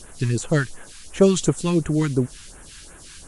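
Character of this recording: a quantiser's noise floor 8-bit, dither triangular; phasing stages 2, 2.8 Hz, lowest notch 500–4500 Hz; MP3

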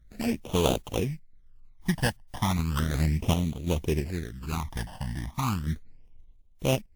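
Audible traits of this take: aliases and images of a low sample rate 2100 Hz, jitter 20%; random-step tremolo 3 Hz; phasing stages 12, 0.35 Hz, lowest notch 400–1700 Hz; WMA

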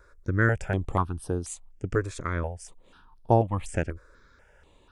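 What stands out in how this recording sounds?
notches that jump at a steady rate 4.1 Hz 810–7300 Hz

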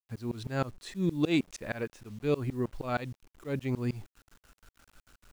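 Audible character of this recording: tremolo saw up 6.4 Hz, depth 100%; a quantiser's noise floor 10-bit, dither none

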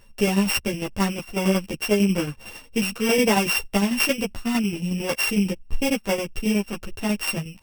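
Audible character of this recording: a buzz of ramps at a fixed pitch in blocks of 16 samples; tremolo saw down 11 Hz, depth 60%; a shimmering, thickened sound

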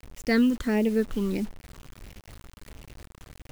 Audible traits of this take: phasing stages 8, 1.5 Hz, lowest notch 630–1300 Hz; a quantiser's noise floor 8-bit, dither none

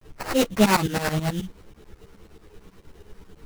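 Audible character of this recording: aliases and images of a low sample rate 3400 Hz, jitter 20%; tremolo saw up 9.3 Hz, depth 95%; a quantiser's noise floor 10-bit, dither none; a shimmering, thickened sound

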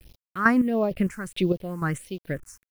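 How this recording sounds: chopped level 2.2 Hz, depth 65%, duty 35%; a quantiser's noise floor 10-bit, dither none; phasing stages 4, 1.5 Hz, lowest notch 560–1600 Hz

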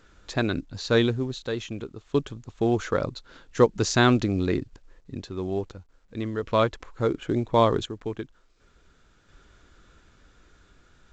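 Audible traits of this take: random-step tremolo 1.4 Hz, depth 70%; A-law

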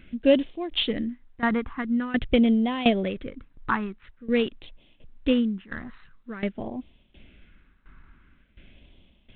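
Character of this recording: phasing stages 4, 0.47 Hz, lowest notch 560–1400 Hz; tremolo saw down 1.4 Hz, depth 85%; G.726

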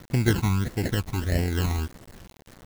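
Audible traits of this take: aliases and images of a low sample rate 1200 Hz, jitter 0%; phasing stages 12, 1.6 Hz, lowest notch 520–1200 Hz; a quantiser's noise floor 8-bit, dither none

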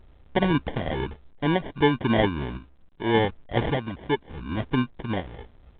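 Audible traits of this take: a quantiser's noise floor 10-bit, dither none; random-step tremolo; aliases and images of a low sample rate 1300 Hz, jitter 0%; A-law

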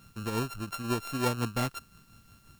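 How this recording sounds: a buzz of ramps at a fixed pitch in blocks of 32 samples; tremolo triangle 5.7 Hz, depth 65%; a quantiser's noise floor 12-bit, dither triangular

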